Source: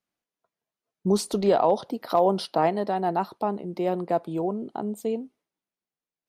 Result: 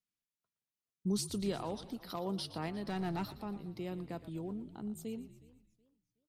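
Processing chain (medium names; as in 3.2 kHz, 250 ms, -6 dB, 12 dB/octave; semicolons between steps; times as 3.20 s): amplifier tone stack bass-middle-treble 6-0-2; 2.87–3.37 s: waveshaping leveller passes 2; frequency-shifting echo 117 ms, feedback 56%, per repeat -47 Hz, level -15 dB; modulated delay 364 ms, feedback 32%, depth 166 cents, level -23.5 dB; trim +8.5 dB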